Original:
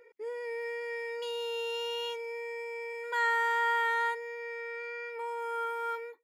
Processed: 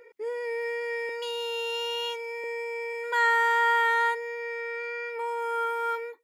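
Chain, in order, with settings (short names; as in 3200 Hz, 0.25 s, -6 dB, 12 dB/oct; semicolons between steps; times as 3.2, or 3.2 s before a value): 1.09–2.44 HPF 480 Hz; gain +5.5 dB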